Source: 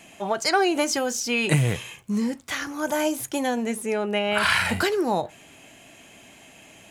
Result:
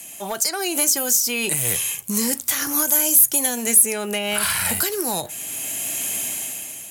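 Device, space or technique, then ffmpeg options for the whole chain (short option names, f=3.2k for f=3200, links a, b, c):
FM broadcast chain: -filter_complex "[0:a]highpass=49,dynaudnorm=f=180:g=9:m=16dB,acrossover=split=370|1300[a][b][c];[a]acompressor=threshold=-25dB:ratio=4[d];[b]acompressor=threshold=-24dB:ratio=4[e];[c]acompressor=threshold=-24dB:ratio=4[f];[d][e][f]amix=inputs=3:normalize=0,aemphasis=mode=production:type=50fm,alimiter=limit=-13dB:level=0:latency=1:release=447,asoftclip=type=hard:threshold=-17dB,lowpass=f=15k:w=0.5412,lowpass=f=15k:w=1.3066,aemphasis=mode=production:type=50fm,volume=-1dB"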